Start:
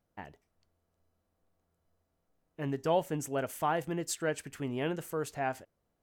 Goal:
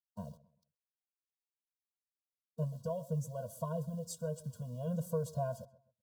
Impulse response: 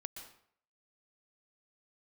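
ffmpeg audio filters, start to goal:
-filter_complex "[0:a]highpass=99,equalizer=f=140:w=0.37:g=10,acompressor=threshold=-27dB:ratio=8,asplit=3[a][b][c];[a]afade=t=out:st=2.63:d=0.02[d];[b]flanger=delay=6.3:depth=4:regen=48:speed=1.6:shape=sinusoidal,afade=t=in:st=2.63:d=0.02,afade=t=out:st=4.86:d=0.02[e];[c]afade=t=in:st=4.86:d=0.02[f];[d][e][f]amix=inputs=3:normalize=0,acrusher=bits=9:mix=0:aa=0.000001,asuperstop=centerf=2100:order=4:qfactor=0.72,asplit=2[g][h];[h]adelay=130,lowpass=f=2.4k:p=1,volume=-19dB,asplit=2[i][j];[j]adelay=130,lowpass=f=2.4k:p=1,volume=0.3,asplit=2[k][l];[l]adelay=130,lowpass=f=2.4k:p=1,volume=0.3[m];[g][i][k][m]amix=inputs=4:normalize=0,afftfilt=real='re*eq(mod(floor(b*sr/1024/230),2),0)':imag='im*eq(mod(floor(b*sr/1024/230),2),0)':win_size=1024:overlap=0.75"

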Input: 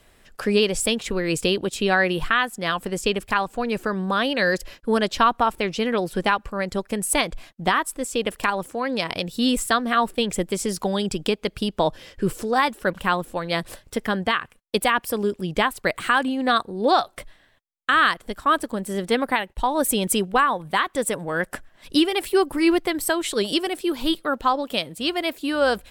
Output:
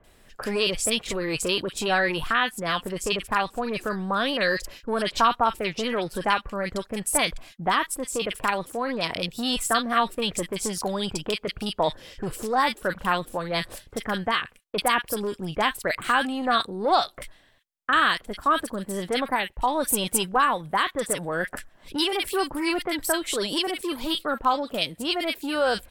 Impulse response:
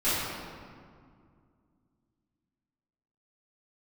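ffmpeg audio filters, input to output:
-filter_complex "[0:a]acrossover=split=590[a][b];[a]asoftclip=type=tanh:threshold=-27.5dB[c];[c][b]amix=inputs=2:normalize=0,acrossover=split=1700[d][e];[e]adelay=40[f];[d][f]amix=inputs=2:normalize=0"

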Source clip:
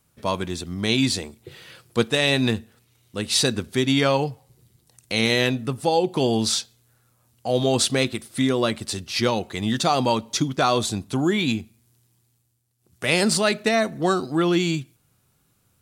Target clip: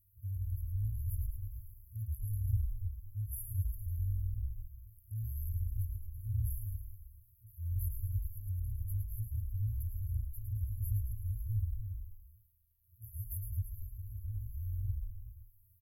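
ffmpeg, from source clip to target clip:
-filter_complex "[0:a]asplit=9[a][b][c][d][e][f][g][h][i];[b]adelay=108,afreqshift=-42,volume=-6.5dB[j];[c]adelay=216,afreqshift=-84,volume=-11.1dB[k];[d]adelay=324,afreqshift=-126,volume=-15.7dB[l];[e]adelay=432,afreqshift=-168,volume=-20.2dB[m];[f]adelay=540,afreqshift=-210,volume=-24.8dB[n];[g]adelay=648,afreqshift=-252,volume=-29.4dB[o];[h]adelay=756,afreqshift=-294,volume=-34dB[p];[i]adelay=864,afreqshift=-336,volume=-38.6dB[q];[a][j][k][l][m][n][o][p][q]amix=inputs=9:normalize=0,afftfilt=real='re*(1-between(b*sr/4096,110,11000))':imag='im*(1-between(b*sr/4096,110,11000))':win_size=4096:overlap=0.75"

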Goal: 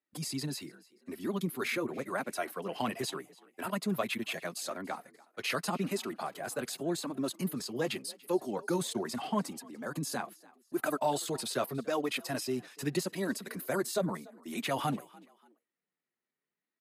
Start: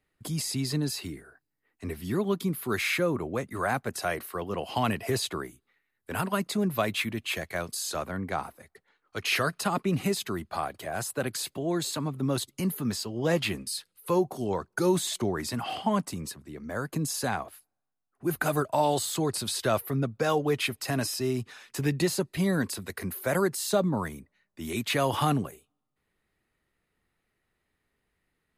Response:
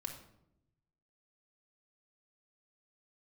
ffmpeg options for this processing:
-filter_complex "[0:a]highpass=f=160:w=0.5412,highpass=f=160:w=1.3066,agate=range=-9dB:threshold=-54dB:ratio=16:detection=peak,flanger=delay=3:depth=5.6:regen=-27:speed=0.49:shape=sinusoidal,atempo=1.7,asplit=3[a][b][c];[b]adelay=290,afreqshift=45,volume=-23dB[d];[c]adelay=580,afreqshift=90,volume=-32.4dB[e];[a][d][e]amix=inputs=3:normalize=0,volume=-1dB"

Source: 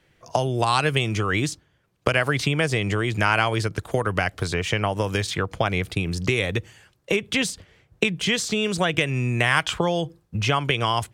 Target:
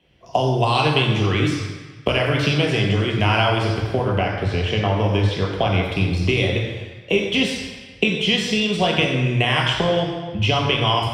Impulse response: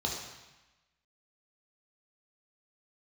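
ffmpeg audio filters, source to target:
-filter_complex "[0:a]asettb=1/sr,asplit=3[a][b][c];[a]atrim=end=3.924[d];[b]atrim=start=3.92:end=5.49,asetpts=PTS-STARTPTS,afade=t=in:d=0.004:c=qsin,afade=t=out:st=1.566:d=0.004:c=qsin,highshelf=f=4.6k:g=-9.5[e];[c]atrim=start=5.486[f];[d][e]acrossfade=d=0.004:c1=hsin:c2=qsin[g];[g][f]acrossfade=d=0.004:c1=qsin:c2=hsin[h];[1:a]atrim=start_sample=2205,asetrate=35280,aresample=44100[i];[h][i]afir=irnorm=-1:irlink=0,volume=-6dB"

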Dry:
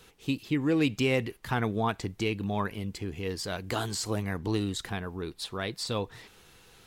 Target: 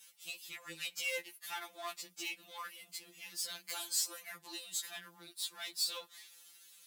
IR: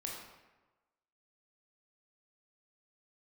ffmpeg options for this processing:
-af "aeval=exprs='if(lt(val(0),0),0.447*val(0),val(0))':c=same,aderivative,afftfilt=real='re*2.83*eq(mod(b,8),0)':imag='im*2.83*eq(mod(b,8),0)':win_size=2048:overlap=0.75,volume=7dB"

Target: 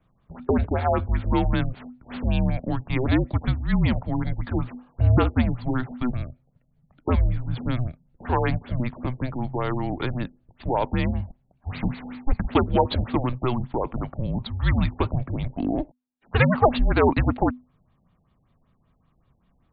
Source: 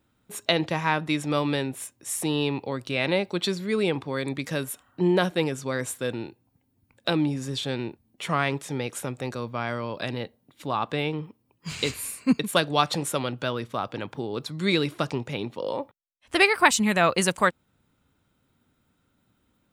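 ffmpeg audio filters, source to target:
-filter_complex "[0:a]acrossover=split=540|1500[a][b][c];[c]aeval=exprs='max(val(0),0)':c=same[d];[a][b][d]amix=inputs=3:normalize=0,aeval=exprs='0.501*(cos(1*acos(clip(val(0)/0.501,-1,1)))-cos(1*PI/2))+0.126*(cos(3*acos(clip(val(0)/0.501,-1,1)))-cos(3*PI/2))+0.00708*(cos(4*acos(clip(val(0)/0.501,-1,1)))-cos(4*PI/2))+0.0631*(cos(5*acos(clip(val(0)/0.501,-1,1)))-cos(5*PI/2))':c=same,afreqshift=-250,afftfilt=real='re*lt(b*sr/1024,860*pow(4800/860,0.5+0.5*sin(2*PI*5.2*pts/sr)))':imag='im*lt(b*sr/1024,860*pow(4800/860,0.5+0.5*sin(2*PI*5.2*pts/sr)))':win_size=1024:overlap=0.75,volume=6.5dB"

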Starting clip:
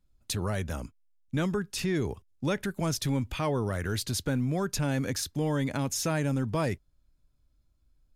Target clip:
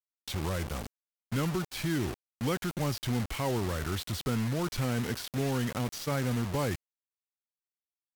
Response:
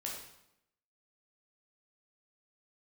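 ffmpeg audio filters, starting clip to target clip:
-filter_complex "[0:a]acrossover=split=4900[a][b];[b]acompressor=threshold=-46dB:ratio=4:attack=1:release=60[c];[a][c]amix=inputs=2:normalize=0,acrusher=bits=5:mix=0:aa=0.000001,asetrate=39289,aresample=44100,atempo=1.12246,volume=-2dB"

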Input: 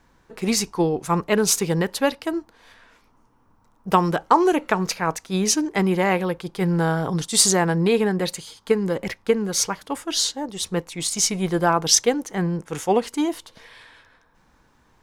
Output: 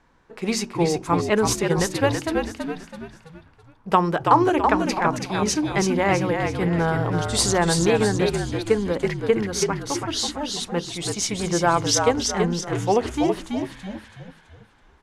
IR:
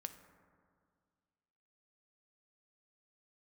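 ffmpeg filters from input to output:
-filter_complex "[0:a]lowpass=11k,bass=f=250:g=-2,treble=f=4k:g=-6,bandreject=f=46.58:t=h:w=4,bandreject=f=93.16:t=h:w=4,bandreject=f=139.74:t=h:w=4,bandreject=f=186.32:t=h:w=4,bandreject=f=232.9:t=h:w=4,bandreject=f=279.48:t=h:w=4,bandreject=f=326.06:t=h:w=4,bandreject=f=372.64:t=h:w=4,asplit=2[a][b];[b]asplit=5[c][d][e][f][g];[c]adelay=329,afreqshift=-54,volume=-4.5dB[h];[d]adelay=658,afreqshift=-108,volume=-11.8dB[i];[e]adelay=987,afreqshift=-162,volume=-19.2dB[j];[f]adelay=1316,afreqshift=-216,volume=-26.5dB[k];[g]adelay=1645,afreqshift=-270,volume=-33.8dB[l];[h][i][j][k][l]amix=inputs=5:normalize=0[m];[a][m]amix=inputs=2:normalize=0"

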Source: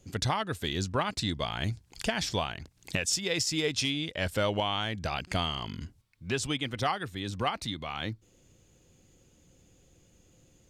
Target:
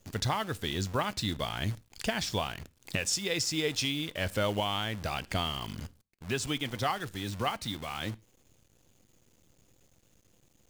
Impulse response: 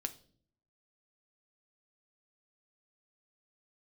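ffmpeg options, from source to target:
-filter_complex "[0:a]acrusher=bits=8:dc=4:mix=0:aa=0.000001,asplit=2[a][b];[1:a]atrim=start_sample=2205,afade=t=out:st=0.14:d=0.01,atrim=end_sample=6615,asetrate=31311,aresample=44100[c];[b][c]afir=irnorm=-1:irlink=0,volume=-11dB[d];[a][d]amix=inputs=2:normalize=0,volume=-3.5dB"

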